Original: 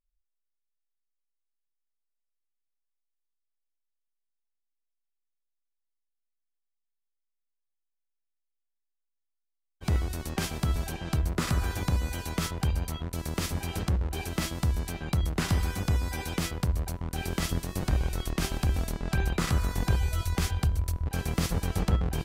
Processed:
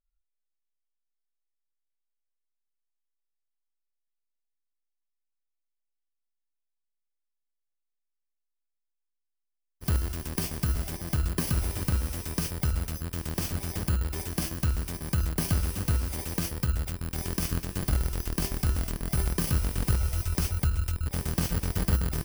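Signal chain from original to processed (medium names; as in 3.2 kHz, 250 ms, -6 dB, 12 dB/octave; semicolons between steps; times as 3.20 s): bit-reversed sample order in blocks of 32 samples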